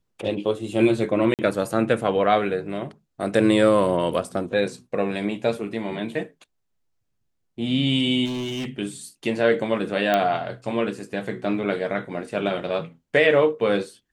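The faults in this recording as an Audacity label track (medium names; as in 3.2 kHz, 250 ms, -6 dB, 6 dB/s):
1.340000	1.390000	dropout 48 ms
8.250000	8.690000	clipped -25.5 dBFS
10.140000	10.140000	pop -8 dBFS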